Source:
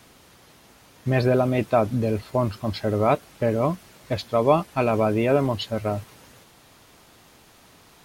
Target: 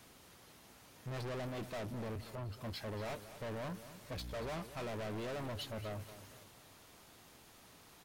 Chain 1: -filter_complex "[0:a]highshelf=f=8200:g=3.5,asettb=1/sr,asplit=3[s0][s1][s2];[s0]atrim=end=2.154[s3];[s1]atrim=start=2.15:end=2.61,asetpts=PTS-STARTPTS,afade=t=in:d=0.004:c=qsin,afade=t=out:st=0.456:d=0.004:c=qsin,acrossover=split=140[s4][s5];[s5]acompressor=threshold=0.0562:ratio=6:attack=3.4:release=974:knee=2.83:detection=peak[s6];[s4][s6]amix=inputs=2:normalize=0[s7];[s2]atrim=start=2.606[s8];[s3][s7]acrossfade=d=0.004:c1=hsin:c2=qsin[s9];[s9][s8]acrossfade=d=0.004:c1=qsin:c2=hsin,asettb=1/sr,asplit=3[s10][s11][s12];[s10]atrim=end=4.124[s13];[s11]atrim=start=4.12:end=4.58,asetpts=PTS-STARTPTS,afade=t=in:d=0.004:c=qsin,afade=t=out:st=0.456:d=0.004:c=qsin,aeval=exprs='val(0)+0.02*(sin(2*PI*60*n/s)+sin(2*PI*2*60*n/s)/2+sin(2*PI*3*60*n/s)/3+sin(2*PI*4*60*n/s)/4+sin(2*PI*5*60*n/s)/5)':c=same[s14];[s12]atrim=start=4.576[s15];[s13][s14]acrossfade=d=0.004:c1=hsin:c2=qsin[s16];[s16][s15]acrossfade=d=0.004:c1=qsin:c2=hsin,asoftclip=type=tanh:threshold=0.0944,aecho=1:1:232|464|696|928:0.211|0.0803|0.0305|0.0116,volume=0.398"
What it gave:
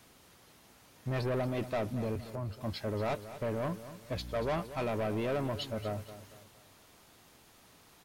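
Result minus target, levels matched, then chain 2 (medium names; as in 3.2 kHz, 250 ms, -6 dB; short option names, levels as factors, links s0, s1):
saturation: distortion -6 dB
-filter_complex "[0:a]highshelf=f=8200:g=3.5,asettb=1/sr,asplit=3[s0][s1][s2];[s0]atrim=end=2.154[s3];[s1]atrim=start=2.15:end=2.61,asetpts=PTS-STARTPTS,afade=t=in:d=0.004:c=qsin,afade=t=out:st=0.456:d=0.004:c=qsin,acrossover=split=140[s4][s5];[s5]acompressor=threshold=0.0562:ratio=6:attack=3.4:release=974:knee=2.83:detection=peak[s6];[s4][s6]amix=inputs=2:normalize=0[s7];[s2]atrim=start=2.606[s8];[s3][s7]acrossfade=d=0.004:c1=hsin:c2=qsin[s9];[s9][s8]acrossfade=d=0.004:c1=qsin:c2=hsin,asettb=1/sr,asplit=3[s10][s11][s12];[s10]atrim=end=4.124[s13];[s11]atrim=start=4.12:end=4.58,asetpts=PTS-STARTPTS,afade=t=in:d=0.004:c=qsin,afade=t=out:st=0.456:d=0.004:c=qsin,aeval=exprs='val(0)+0.02*(sin(2*PI*60*n/s)+sin(2*PI*2*60*n/s)/2+sin(2*PI*3*60*n/s)/3+sin(2*PI*4*60*n/s)/4+sin(2*PI*5*60*n/s)/5)':c=same[s14];[s12]atrim=start=4.576[s15];[s13][s14]acrossfade=d=0.004:c1=hsin:c2=qsin[s16];[s16][s15]acrossfade=d=0.004:c1=qsin:c2=hsin,asoftclip=type=tanh:threshold=0.0251,aecho=1:1:232|464|696|928:0.211|0.0803|0.0305|0.0116,volume=0.398"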